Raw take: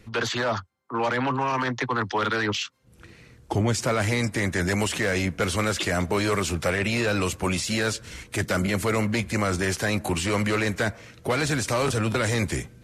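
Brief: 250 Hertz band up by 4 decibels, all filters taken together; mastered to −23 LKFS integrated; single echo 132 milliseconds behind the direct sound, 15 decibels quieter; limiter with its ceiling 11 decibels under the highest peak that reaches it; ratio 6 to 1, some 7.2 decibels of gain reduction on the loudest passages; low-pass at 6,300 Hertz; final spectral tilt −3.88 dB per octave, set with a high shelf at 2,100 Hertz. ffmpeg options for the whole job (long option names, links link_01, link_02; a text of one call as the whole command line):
ffmpeg -i in.wav -af "lowpass=6300,equalizer=frequency=250:width_type=o:gain=5,highshelf=frequency=2100:gain=8.5,acompressor=threshold=-25dB:ratio=6,alimiter=level_in=1.5dB:limit=-24dB:level=0:latency=1,volume=-1.5dB,aecho=1:1:132:0.178,volume=11dB" out.wav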